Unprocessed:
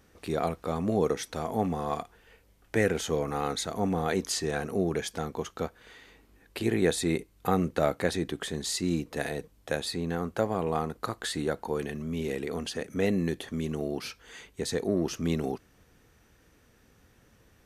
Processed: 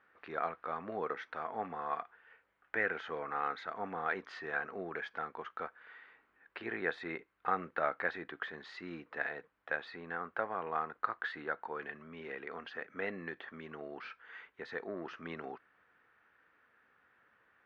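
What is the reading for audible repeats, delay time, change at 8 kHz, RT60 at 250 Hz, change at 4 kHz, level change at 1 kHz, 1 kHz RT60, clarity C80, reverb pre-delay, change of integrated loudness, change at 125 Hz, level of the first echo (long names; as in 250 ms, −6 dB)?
no echo audible, no echo audible, below −35 dB, no reverb audible, −16.5 dB, −3.5 dB, no reverb audible, no reverb audible, no reverb audible, −9.0 dB, −22.0 dB, no echo audible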